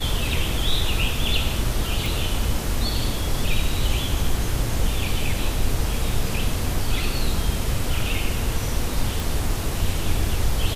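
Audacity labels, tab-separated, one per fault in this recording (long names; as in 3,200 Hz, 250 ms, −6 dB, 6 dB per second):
2.060000	2.060000	click
9.200000	9.200000	click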